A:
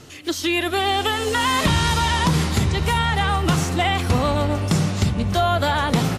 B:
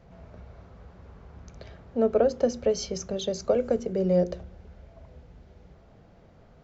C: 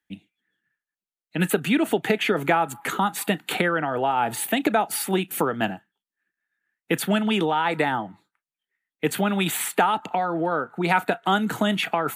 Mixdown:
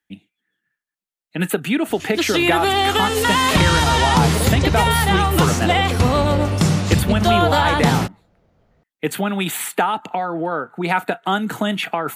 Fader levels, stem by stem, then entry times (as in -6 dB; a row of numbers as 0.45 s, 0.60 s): +3.0 dB, -5.0 dB, +1.5 dB; 1.90 s, 2.20 s, 0.00 s